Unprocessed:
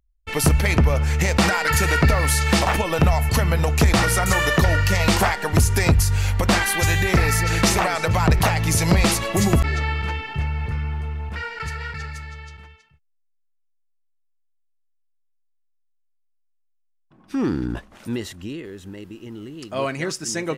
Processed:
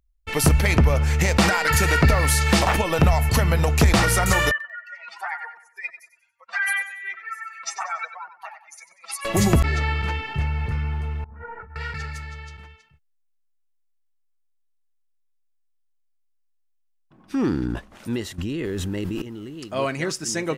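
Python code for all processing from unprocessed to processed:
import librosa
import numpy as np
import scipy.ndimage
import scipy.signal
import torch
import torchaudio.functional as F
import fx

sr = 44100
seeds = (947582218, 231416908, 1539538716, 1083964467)

y = fx.chain(x, sr, fx.spec_expand(power=2.6),
    fx.highpass(hz=1100.0, slope=24),
    fx.echo_feedback(ms=94, feedback_pct=39, wet_db=-12.0), at=(4.51, 9.25))
y = fx.chain(y, sr, fx.lowpass(hz=1300.0, slope=24),
    fx.over_compress(threshold_db=-35.0, ratio=-0.5),
    fx.ensemble(), at=(11.24, 11.76))
y = fx.chain(y, sr, fx.low_shelf(hz=180.0, db=5.5),
    fx.env_flatten(amount_pct=100), at=(18.38, 19.22))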